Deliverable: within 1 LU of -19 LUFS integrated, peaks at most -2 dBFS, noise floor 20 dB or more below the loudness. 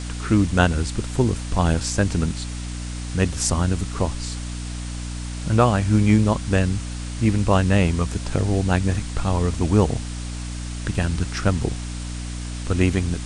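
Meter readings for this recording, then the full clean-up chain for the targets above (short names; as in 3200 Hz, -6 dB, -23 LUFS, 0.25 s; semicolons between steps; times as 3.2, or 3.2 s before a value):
hum 60 Hz; harmonics up to 300 Hz; hum level -28 dBFS; noise floor -30 dBFS; noise floor target -43 dBFS; loudness -22.5 LUFS; peak -2.5 dBFS; loudness target -19.0 LUFS
-> de-hum 60 Hz, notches 5; denoiser 13 dB, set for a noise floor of -30 dBFS; gain +3.5 dB; limiter -2 dBFS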